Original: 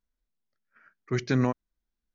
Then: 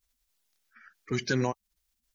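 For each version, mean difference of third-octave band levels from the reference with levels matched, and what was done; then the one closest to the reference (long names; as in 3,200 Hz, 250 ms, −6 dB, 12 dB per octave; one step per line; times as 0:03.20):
3.5 dB: spectral magnitudes quantised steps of 30 dB
high-shelf EQ 2,300 Hz +11 dB
in parallel at +1.5 dB: downward compressor, threshold −33 dBFS, peak gain reduction 13 dB
on the sum: level −5.5 dB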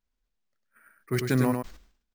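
6.0 dB: single-tap delay 100 ms −6 dB
bad sample-rate conversion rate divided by 4×, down none, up hold
level that may fall only so fast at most 110 dB per second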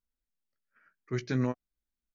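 1.0 dB: parametric band 1,000 Hz −2.5 dB 0.29 octaves
notch filter 730 Hz, Q 12
double-tracking delay 16 ms −9.5 dB
level −6.5 dB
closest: third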